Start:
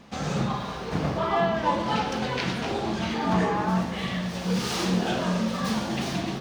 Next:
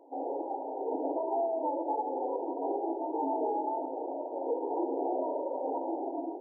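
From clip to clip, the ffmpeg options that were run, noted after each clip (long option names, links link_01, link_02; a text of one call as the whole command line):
ffmpeg -i in.wav -af "afftfilt=real='re*between(b*sr/4096,260,970)':imag='im*between(b*sr/4096,260,970)':win_size=4096:overlap=0.75,alimiter=level_in=1.5dB:limit=-24dB:level=0:latency=1:release=438,volume=-1.5dB,dynaudnorm=framelen=140:gausssize=9:maxgain=3dB" out.wav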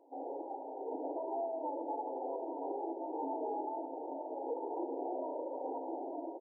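ffmpeg -i in.wav -af "aecho=1:1:890:0.376,volume=-7dB" out.wav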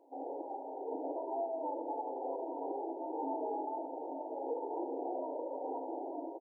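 ffmpeg -i in.wav -filter_complex "[0:a]asplit=2[link_01][link_02];[link_02]adelay=44,volume=-10.5dB[link_03];[link_01][link_03]amix=inputs=2:normalize=0" out.wav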